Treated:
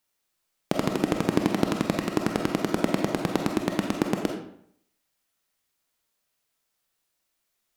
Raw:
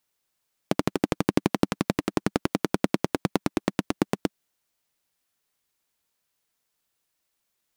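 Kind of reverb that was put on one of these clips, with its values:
comb and all-pass reverb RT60 0.67 s, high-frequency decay 0.75×, pre-delay 5 ms, DRR 2 dB
level −1 dB

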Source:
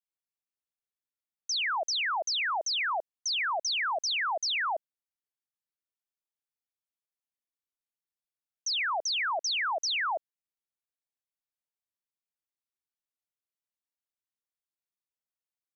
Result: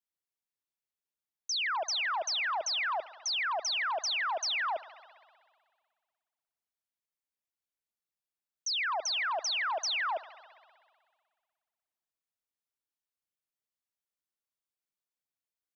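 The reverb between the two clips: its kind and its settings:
spring reverb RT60 1.9 s, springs 58 ms, chirp 50 ms, DRR 16 dB
level −2 dB

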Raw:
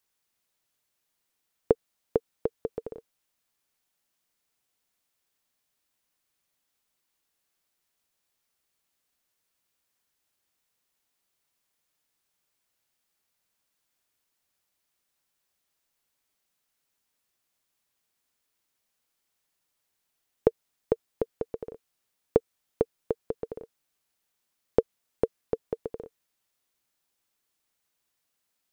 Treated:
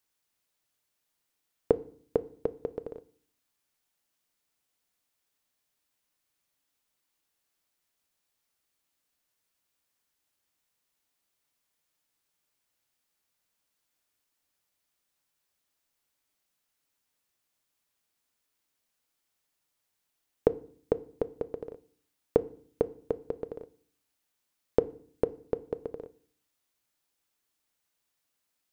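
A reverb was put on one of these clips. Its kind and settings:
feedback delay network reverb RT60 0.51 s, low-frequency decay 1.45×, high-frequency decay 0.9×, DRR 14 dB
level −1.5 dB

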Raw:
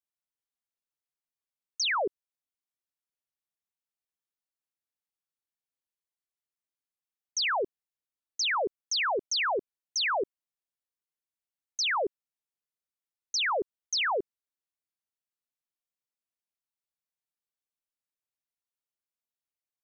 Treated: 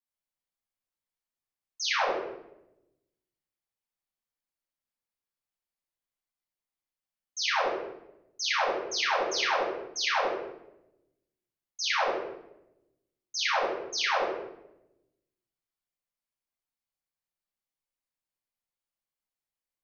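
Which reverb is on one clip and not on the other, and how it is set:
rectangular room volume 290 cubic metres, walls mixed, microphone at 6.3 metres
level −14 dB

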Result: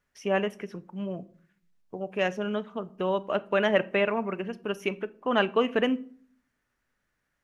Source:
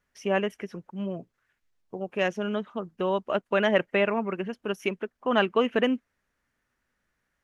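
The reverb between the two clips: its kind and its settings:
rectangular room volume 550 cubic metres, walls furnished, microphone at 0.37 metres
level −1 dB

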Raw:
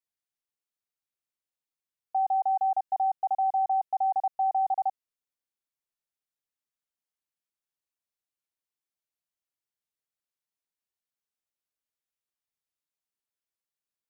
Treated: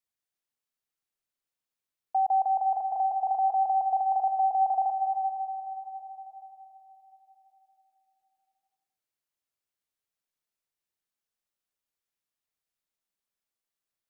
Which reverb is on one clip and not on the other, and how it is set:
comb and all-pass reverb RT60 4.1 s, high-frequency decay 0.5×, pre-delay 120 ms, DRR 5 dB
level +1 dB

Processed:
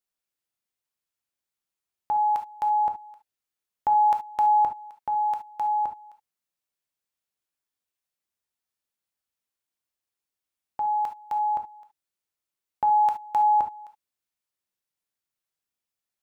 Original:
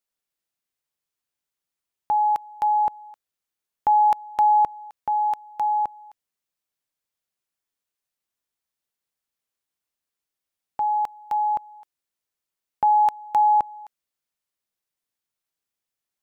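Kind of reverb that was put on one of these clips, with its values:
reverb whose tail is shaped and stops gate 90 ms flat, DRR 5.5 dB
level −3.5 dB

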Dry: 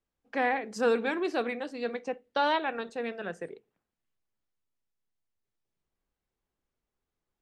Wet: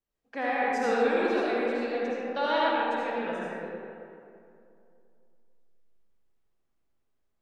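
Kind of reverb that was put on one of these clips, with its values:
comb and all-pass reverb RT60 2.6 s, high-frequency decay 0.5×, pre-delay 35 ms, DRR −7 dB
level −5 dB

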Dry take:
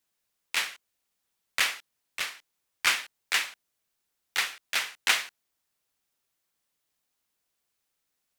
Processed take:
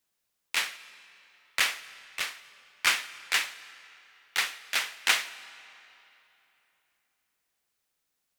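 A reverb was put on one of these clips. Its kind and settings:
comb and all-pass reverb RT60 3.2 s, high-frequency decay 0.8×, pre-delay 115 ms, DRR 17.5 dB

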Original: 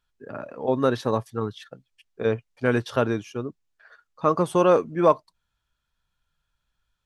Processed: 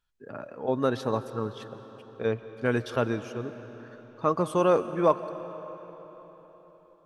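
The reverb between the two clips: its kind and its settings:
comb and all-pass reverb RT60 4.4 s, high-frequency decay 0.8×, pre-delay 95 ms, DRR 12 dB
level −4 dB

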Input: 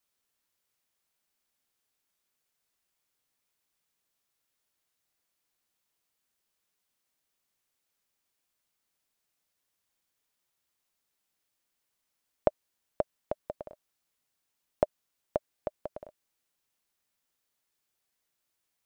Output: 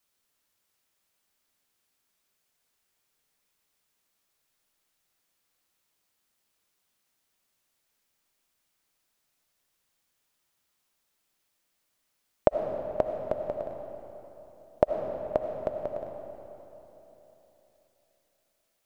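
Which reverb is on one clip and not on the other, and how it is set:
comb and all-pass reverb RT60 3.6 s, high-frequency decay 0.7×, pre-delay 40 ms, DRR 4 dB
level +4 dB

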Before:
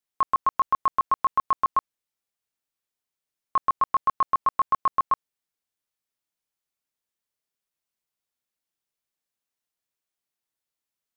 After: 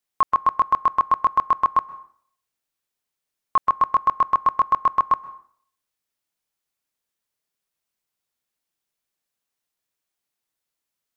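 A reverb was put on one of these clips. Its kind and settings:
dense smooth reverb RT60 0.55 s, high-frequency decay 0.75×, pre-delay 115 ms, DRR 18.5 dB
level +4 dB

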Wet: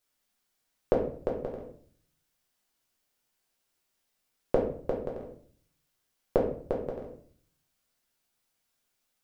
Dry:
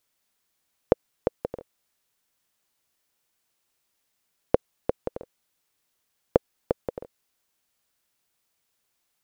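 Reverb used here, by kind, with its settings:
rectangular room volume 63 cubic metres, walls mixed, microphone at 0.96 metres
level −6.5 dB

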